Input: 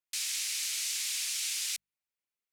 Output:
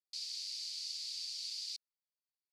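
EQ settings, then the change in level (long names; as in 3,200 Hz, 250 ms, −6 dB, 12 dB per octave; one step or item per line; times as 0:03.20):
resonant band-pass 4,600 Hz, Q 8.1
+1.0 dB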